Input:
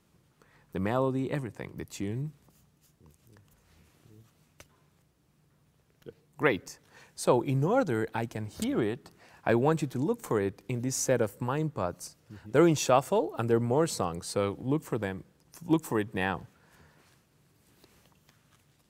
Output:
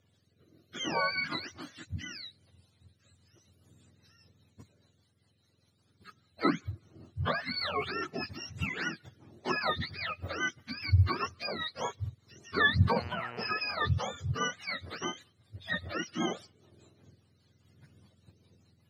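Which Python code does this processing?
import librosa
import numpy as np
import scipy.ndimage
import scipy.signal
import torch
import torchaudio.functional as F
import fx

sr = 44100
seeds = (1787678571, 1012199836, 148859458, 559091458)

y = fx.octave_mirror(x, sr, pivot_hz=770.0)
y = fx.rotary_switch(y, sr, hz=0.6, then_hz=5.0, switch_at_s=2.58)
y = fx.dmg_buzz(y, sr, base_hz=120.0, harmonics=25, level_db=-47.0, tilt_db=-2, odd_only=False, at=(12.95, 13.46), fade=0.02)
y = y * librosa.db_to_amplitude(1.0)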